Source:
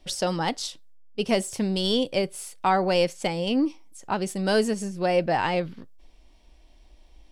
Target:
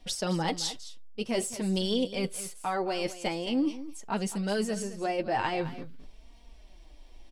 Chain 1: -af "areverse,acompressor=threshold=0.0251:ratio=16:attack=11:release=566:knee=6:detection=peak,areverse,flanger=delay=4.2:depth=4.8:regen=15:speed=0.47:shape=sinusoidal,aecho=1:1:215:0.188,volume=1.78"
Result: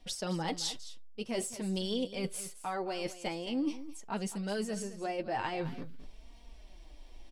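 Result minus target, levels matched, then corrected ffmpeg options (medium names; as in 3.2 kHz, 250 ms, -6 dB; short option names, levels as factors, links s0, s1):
compression: peak gain reduction +5.5 dB
-af "areverse,acompressor=threshold=0.0501:ratio=16:attack=11:release=566:knee=6:detection=peak,areverse,flanger=delay=4.2:depth=4.8:regen=15:speed=0.47:shape=sinusoidal,aecho=1:1:215:0.188,volume=1.78"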